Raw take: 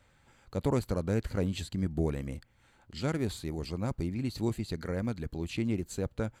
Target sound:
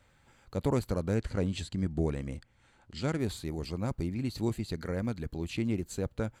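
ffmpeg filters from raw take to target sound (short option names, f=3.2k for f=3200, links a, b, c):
-filter_complex "[0:a]asettb=1/sr,asplit=3[a][b][c];[a]atrim=end=1.154[d];[b]atrim=start=1.15:end=3.2,asetpts=PTS-STARTPTS,afade=t=in:d=0.004:c=qsin,afade=t=out:st=2.046:d=0.004:c=qsin,lowpass=f=10k:w=0.5412,lowpass=f=10k:w=1.3066[e];[c]atrim=start=3.196[f];[d][e]acrossfade=d=0.004:c1=hsin:c2=qsin[g];[g][f]acrossfade=d=0.004:c1=qsin:c2=hsin"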